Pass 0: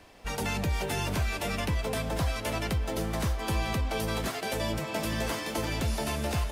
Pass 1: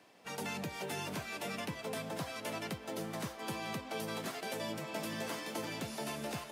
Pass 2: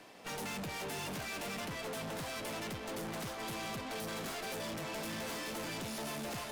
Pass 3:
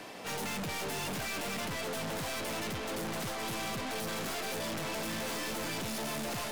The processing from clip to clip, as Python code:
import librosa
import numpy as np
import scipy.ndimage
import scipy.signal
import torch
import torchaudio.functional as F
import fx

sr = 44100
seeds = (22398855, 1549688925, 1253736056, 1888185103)

y1 = scipy.signal.sosfilt(scipy.signal.butter(4, 140.0, 'highpass', fs=sr, output='sos'), x)
y1 = F.gain(torch.from_numpy(y1), -7.5).numpy()
y2 = fx.tube_stage(y1, sr, drive_db=50.0, bias=0.7)
y2 = F.gain(torch.from_numpy(y2), 11.0).numpy()
y3 = fx.fold_sine(y2, sr, drive_db=6, ceiling_db=-35.0)